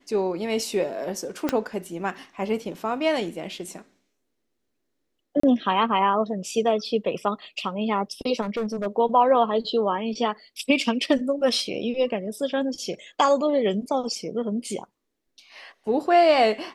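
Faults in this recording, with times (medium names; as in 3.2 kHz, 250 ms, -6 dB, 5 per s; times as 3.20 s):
1.49 s: pop -9 dBFS
5.40–5.43 s: dropout 34 ms
8.41–8.87 s: clipped -23 dBFS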